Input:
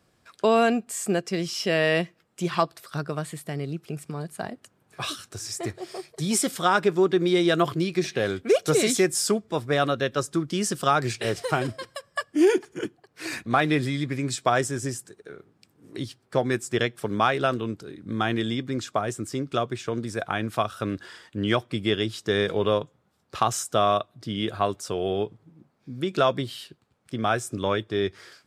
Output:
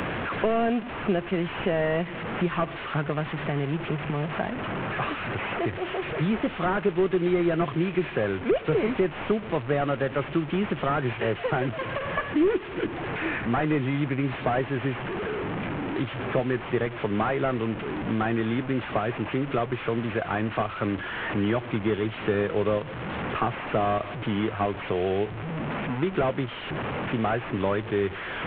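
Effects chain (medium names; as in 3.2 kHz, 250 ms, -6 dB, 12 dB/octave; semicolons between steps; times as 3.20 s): one-bit delta coder 16 kbps, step -31 dBFS; three bands compressed up and down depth 70%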